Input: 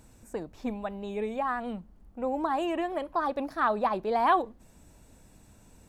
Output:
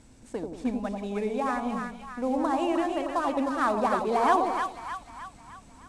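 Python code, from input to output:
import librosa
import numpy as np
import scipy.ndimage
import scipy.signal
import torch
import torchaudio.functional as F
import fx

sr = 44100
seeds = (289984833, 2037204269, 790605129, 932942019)

p1 = fx.cvsd(x, sr, bps=64000)
p2 = scipy.signal.sosfilt(scipy.signal.butter(4, 9600.0, 'lowpass', fs=sr, output='sos'), p1)
p3 = fx.small_body(p2, sr, hz=(260.0, 2200.0), ring_ms=45, db=6)
y = p3 + fx.echo_split(p3, sr, split_hz=970.0, low_ms=89, high_ms=308, feedback_pct=52, wet_db=-4, dry=0)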